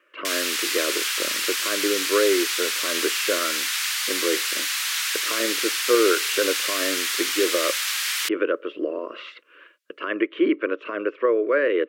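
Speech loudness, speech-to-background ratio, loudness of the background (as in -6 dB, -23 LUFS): -26.0 LUFS, -3.0 dB, -23.0 LUFS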